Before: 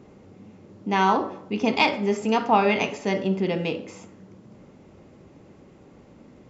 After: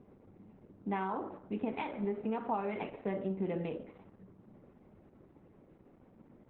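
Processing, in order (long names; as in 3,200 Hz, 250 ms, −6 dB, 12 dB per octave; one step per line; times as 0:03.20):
downward compressor 20 to 1, threshold −22 dBFS, peak gain reduction 10 dB
low-pass filter 1,800 Hz 12 dB per octave
level −7.5 dB
Opus 8 kbit/s 48,000 Hz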